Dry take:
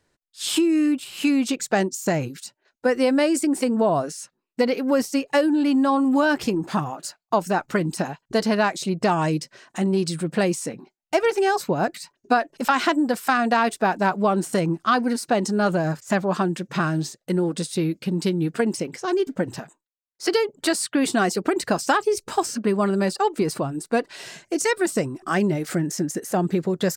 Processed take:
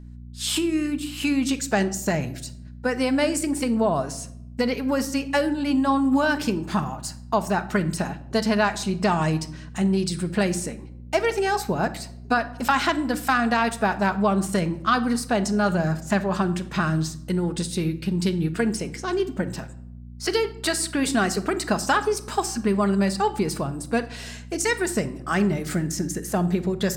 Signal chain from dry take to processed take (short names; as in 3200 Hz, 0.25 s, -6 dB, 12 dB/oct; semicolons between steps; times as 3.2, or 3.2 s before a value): bell 430 Hz -4 dB 1.9 oct; hum 60 Hz, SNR 16 dB; on a send: reverb RT60 0.75 s, pre-delay 5 ms, DRR 9.5 dB